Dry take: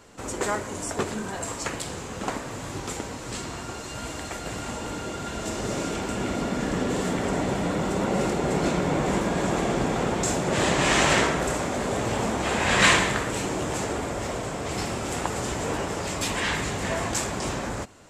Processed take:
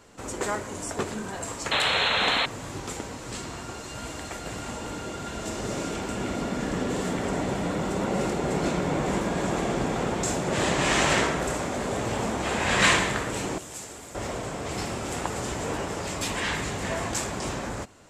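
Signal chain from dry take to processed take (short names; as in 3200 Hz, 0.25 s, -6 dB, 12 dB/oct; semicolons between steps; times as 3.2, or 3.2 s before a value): 1.71–2.46 painted sound noise 410–4300 Hz -22 dBFS; 13.58–14.15 pre-emphasis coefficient 0.8; gain -2 dB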